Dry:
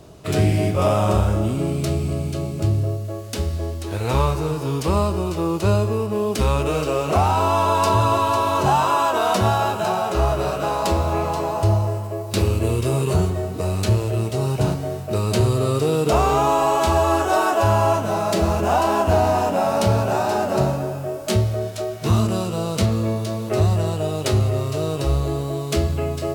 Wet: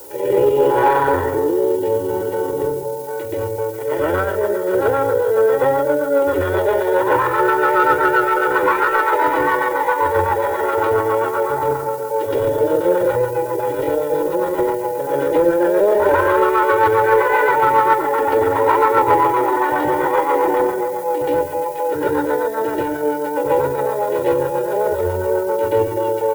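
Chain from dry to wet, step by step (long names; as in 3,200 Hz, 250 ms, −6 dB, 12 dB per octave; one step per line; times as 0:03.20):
backwards echo 133 ms −6 dB
on a send at −17 dB: convolution reverb RT60 0.35 s, pre-delay 72 ms
on the sum: tube saturation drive 9 dB, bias 0.45
comb filter 2.8 ms, depth 93%
rotating-speaker cabinet horn 0.75 Hz, later 7.5 Hz, at 0:02.86
low-pass filter 1,900 Hz 24 dB per octave
low shelf with overshoot 170 Hz −11 dB, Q 3
in parallel at −11.5 dB: hard clipping −17 dBFS, distortion −12 dB
on the sum: background noise violet −37 dBFS
pitch shifter +5 semitones
mains-hum notches 50/100/150 Hz
level +2 dB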